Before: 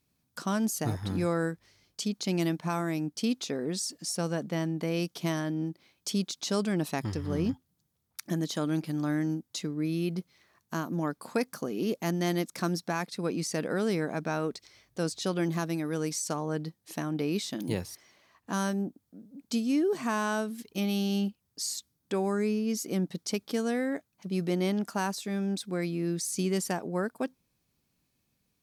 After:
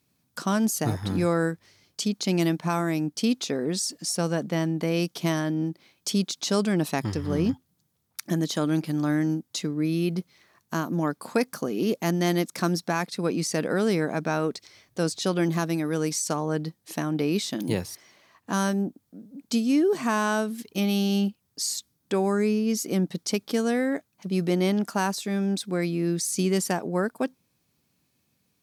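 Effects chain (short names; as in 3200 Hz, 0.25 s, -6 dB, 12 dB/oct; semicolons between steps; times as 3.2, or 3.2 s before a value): HPF 83 Hz; gain +5 dB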